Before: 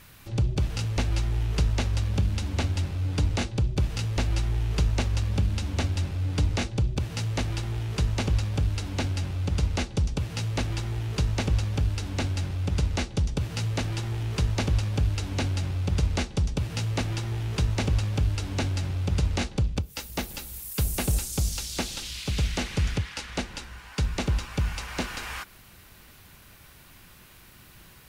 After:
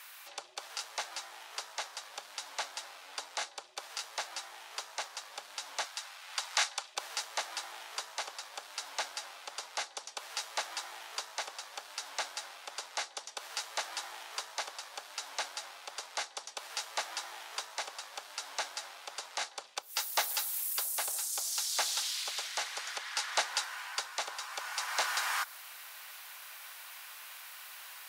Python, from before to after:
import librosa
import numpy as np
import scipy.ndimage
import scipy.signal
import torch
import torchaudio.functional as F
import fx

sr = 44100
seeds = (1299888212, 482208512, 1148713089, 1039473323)

y = fx.highpass(x, sr, hz=910.0, slope=12, at=(5.84, 6.95))
y = fx.dynamic_eq(y, sr, hz=2600.0, q=2.0, threshold_db=-51.0, ratio=4.0, max_db=-7)
y = fx.rider(y, sr, range_db=10, speed_s=0.5)
y = scipy.signal.sosfilt(scipy.signal.butter(4, 740.0, 'highpass', fs=sr, output='sos'), y)